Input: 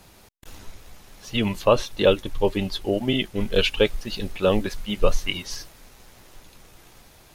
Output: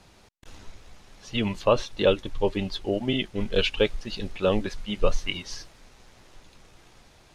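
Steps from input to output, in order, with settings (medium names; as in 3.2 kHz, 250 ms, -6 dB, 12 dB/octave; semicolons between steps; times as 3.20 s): low-pass 7.2 kHz 12 dB/octave; trim -3 dB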